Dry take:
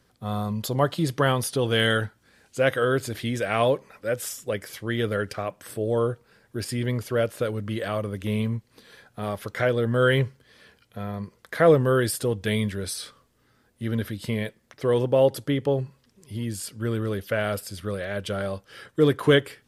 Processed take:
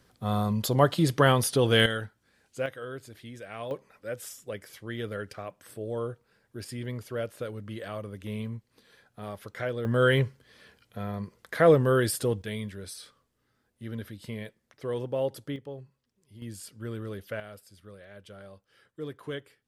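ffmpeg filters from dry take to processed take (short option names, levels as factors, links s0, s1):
-af "asetnsamples=n=441:p=0,asendcmd='1.86 volume volume -8.5dB;2.66 volume volume -16dB;3.71 volume volume -9dB;9.85 volume volume -2dB;12.42 volume volume -10dB;15.56 volume volume -17dB;16.42 volume volume -9.5dB;17.4 volume volume -18.5dB',volume=1.12"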